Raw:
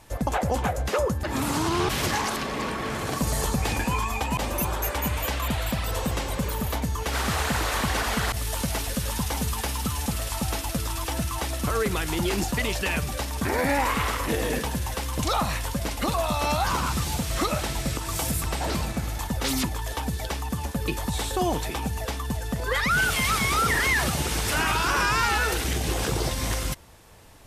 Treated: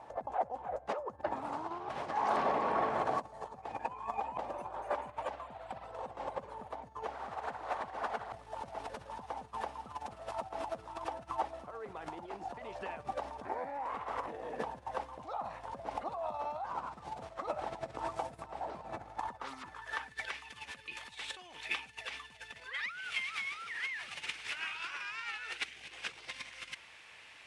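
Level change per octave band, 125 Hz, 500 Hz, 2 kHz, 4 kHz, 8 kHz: −28.0, −10.5, −13.5, −16.0, −26.5 decibels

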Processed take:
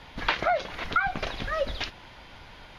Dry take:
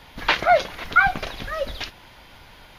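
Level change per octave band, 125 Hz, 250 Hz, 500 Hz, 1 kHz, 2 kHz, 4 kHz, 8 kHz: −2.0, −2.5, −6.5, −7.0, −8.0, −5.0, −6.5 decibels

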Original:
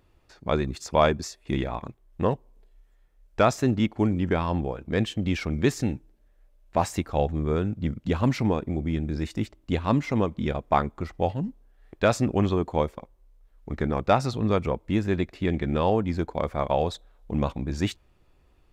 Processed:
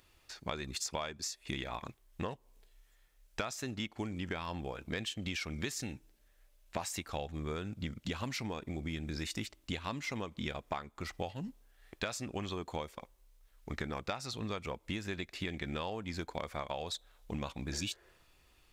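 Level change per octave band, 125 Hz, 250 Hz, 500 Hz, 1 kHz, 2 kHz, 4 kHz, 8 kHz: −15.0, −15.0, −16.0, −14.0, −7.0, −3.0, −1.5 decibels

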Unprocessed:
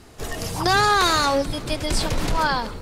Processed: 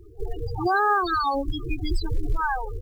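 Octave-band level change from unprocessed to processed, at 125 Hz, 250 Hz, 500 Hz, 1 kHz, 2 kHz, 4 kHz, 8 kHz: −3.5 dB, −3.5 dB, −5.5 dB, −3.0 dB, −4.5 dB, −14.0 dB, below −20 dB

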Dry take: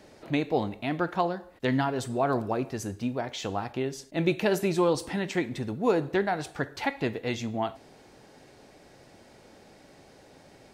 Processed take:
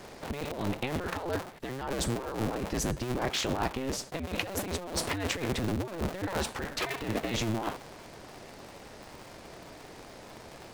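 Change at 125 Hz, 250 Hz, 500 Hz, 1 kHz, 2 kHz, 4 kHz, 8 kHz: −1.5, −5.0, −6.5, −5.0, −2.0, +3.0, +5.5 decibels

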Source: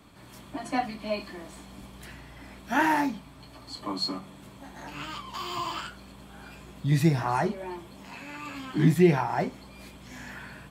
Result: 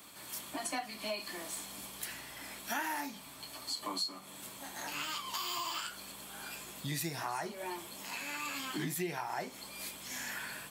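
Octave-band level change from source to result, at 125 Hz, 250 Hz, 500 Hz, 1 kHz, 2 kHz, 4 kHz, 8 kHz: −19.0, −15.5, −12.5, −9.5, −6.0, −1.0, +6.0 decibels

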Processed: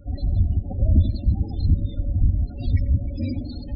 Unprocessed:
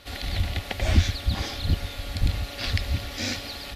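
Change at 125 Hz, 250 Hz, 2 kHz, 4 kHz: +6.0 dB, +5.5 dB, below −20 dB, −17.5 dB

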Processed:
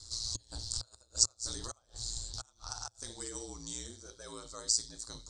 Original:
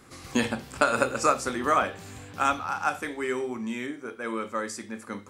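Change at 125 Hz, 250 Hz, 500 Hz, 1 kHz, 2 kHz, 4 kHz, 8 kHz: −6.5, −20.5, −22.0, −25.5, −27.0, +3.0, +5.5 decibels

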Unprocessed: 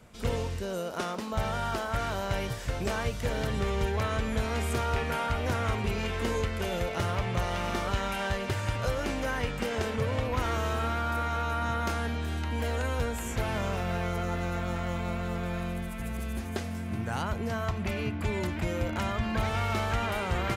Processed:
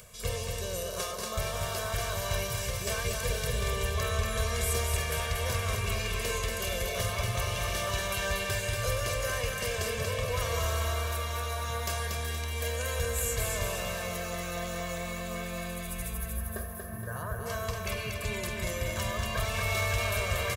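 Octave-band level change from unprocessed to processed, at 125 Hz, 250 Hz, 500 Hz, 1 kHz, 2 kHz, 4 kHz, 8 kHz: −2.0, −9.0, −1.5, −4.0, +1.0, +4.0, +9.5 decibels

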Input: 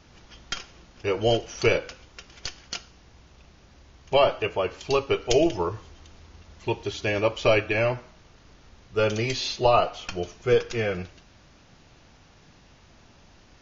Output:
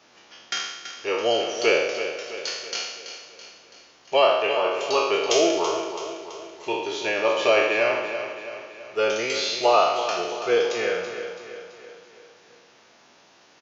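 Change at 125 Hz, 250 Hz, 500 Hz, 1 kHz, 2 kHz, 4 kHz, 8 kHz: below −15 dB, −1.0 dB, +2.0 dB, +4.0 dB, +4.5 dB, +5.0 dB, can't be measured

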